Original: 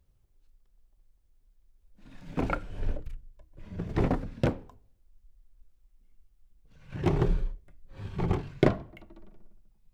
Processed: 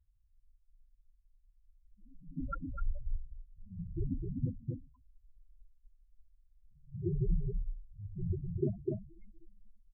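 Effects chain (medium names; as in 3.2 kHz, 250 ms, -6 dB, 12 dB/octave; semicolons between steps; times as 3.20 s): delay 252 ms -3.5 dB; loudest bins only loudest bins 4; trim -4 dB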